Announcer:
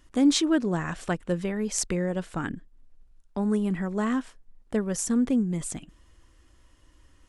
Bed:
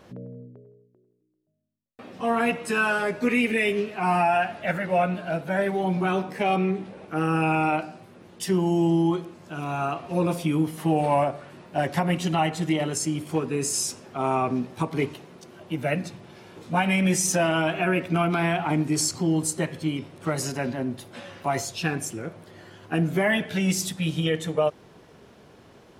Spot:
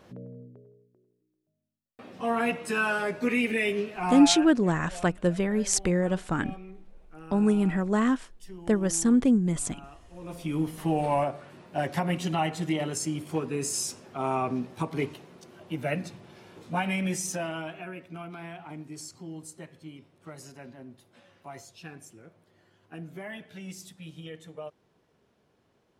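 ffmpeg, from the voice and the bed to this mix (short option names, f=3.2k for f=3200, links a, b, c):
-filter_complex "[0:a]adelay=3950,volume=2.5dB[a];[1:a]volume=14dB,afade=t=out:st=3.91:d=0.7:silence=0.125893,afade=t=in:st=10.21:d=0.43:silence=0.133352,afade=t=out:st=16.48:d=1.45:silence=0.211349[b];[a][b]amix=inputs=2:normalize=0"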